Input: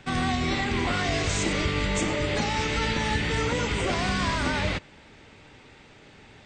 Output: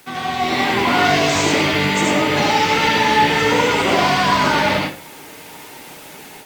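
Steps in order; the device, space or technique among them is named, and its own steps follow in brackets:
filmed off a television (band-pass filter 220–6,900 Hz; parametric band 930 Hz +5.5 dB 0.29 octaves; convolution reverb RT60 0.40 s, pre-delay 70 ms, DRR −1.5 dB; white noise bed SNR 25 dB; automatic gain control gain up to 9 dB; AAC 96 kbit/s 48,000 Hz)

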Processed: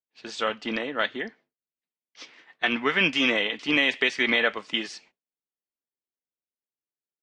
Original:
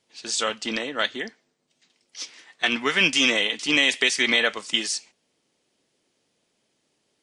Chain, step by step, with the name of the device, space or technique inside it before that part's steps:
hearing-loss simulation (low-pass filter 2,600 Hz 12 dB per octave; downward expander −49 dBFS)

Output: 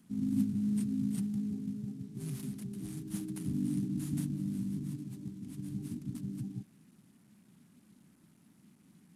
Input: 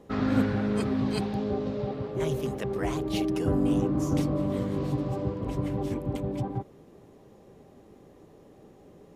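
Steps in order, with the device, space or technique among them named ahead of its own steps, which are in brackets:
elliptic band-stop filter 210–9,600 Hz, stop band 40 dB
early wireless headset (high-pass filter 250 Hz 12 dB per octave; variable-slope delta modulation 64 kbit/s)
0:04.92–0:05.67: low-shelf EQ 180 Hz −7.5 dB
level +4 dB

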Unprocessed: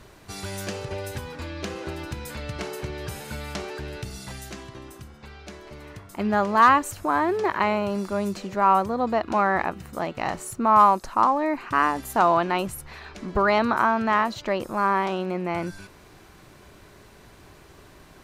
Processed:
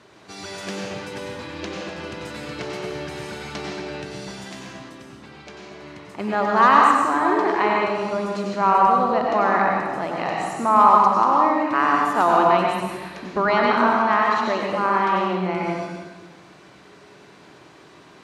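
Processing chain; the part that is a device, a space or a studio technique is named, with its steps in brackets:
supermarket ceiling speaker (band-pass filter 200–6,200 Hz; convolution reverb RT60 1.3 s, pre-delay 87 ms, DRR −1.5 dB)

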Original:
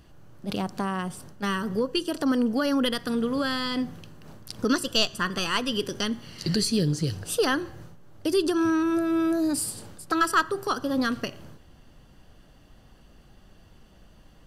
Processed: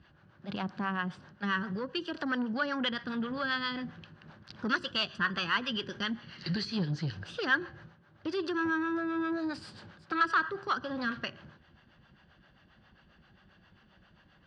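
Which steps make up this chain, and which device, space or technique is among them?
guitar amplifier with harmonic tremolo (two-band tremolo in antiphase 7.5 Hz, depth 70%, crossover 460 Hz; soft clipping −22 dBFS, distortion −16 dB; loudspeaker in its box 91–4,300 Hz, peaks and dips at 120 Hz −4 dB, 280 Hz −7 dB, 450 Hz −8 dB, 670 Hz −4 dB, 1,600 Hz +8 dB)

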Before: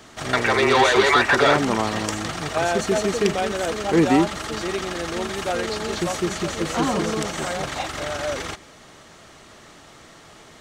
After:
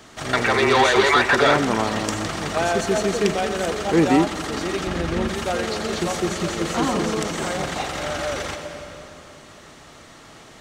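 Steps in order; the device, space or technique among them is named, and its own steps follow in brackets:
0:04.87–0:05.28: bass and treble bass +11 dB, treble −7 dB
compressed reverb return (on a send at −4 dB: convolution reverb RT60 2.5 s, pre-delay 84 ms + downward compressor, threshold −24 dBFS, peak gain reduction 12.5 dB)

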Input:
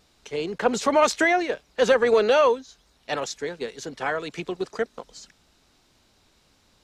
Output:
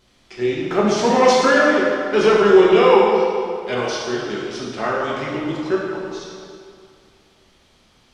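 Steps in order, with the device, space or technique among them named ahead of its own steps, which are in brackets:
slowed and reverbed (speed change −16%; convolution reverb RT60 2.2 s, pre-delay 3 ms, DRR −5.5 dB)

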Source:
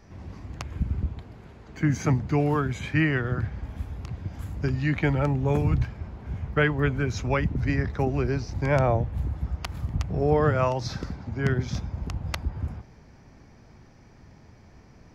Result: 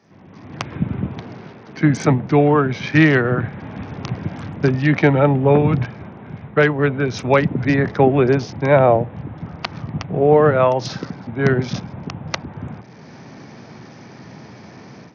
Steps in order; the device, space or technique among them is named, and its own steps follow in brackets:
dynamic equaliser 550 Hz, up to +5 dB, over −37 dBFS, Q 0.93
Bluetooth headset (high-pass filter 130 Hz 24 dB per octave; automatic gain control gain up to 16.5 dB; downsampling to 16,000 Hz; level −1 dB; SBC 64 kbit/s 48,000 Hz)

